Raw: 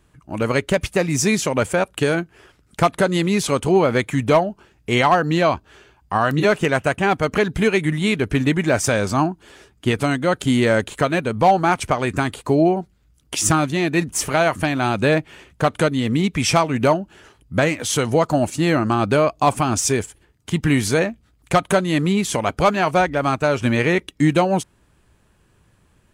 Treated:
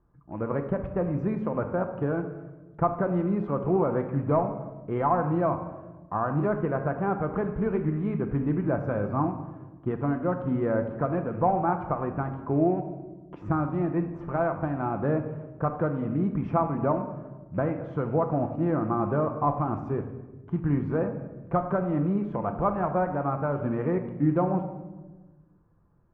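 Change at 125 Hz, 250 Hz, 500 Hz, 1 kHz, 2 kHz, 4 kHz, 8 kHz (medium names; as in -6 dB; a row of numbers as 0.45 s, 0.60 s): -6.0 dB, -7.0 dB, -8.5 dB, -8.5 dB, -18.5 dB, under -35 dB, under -40 dB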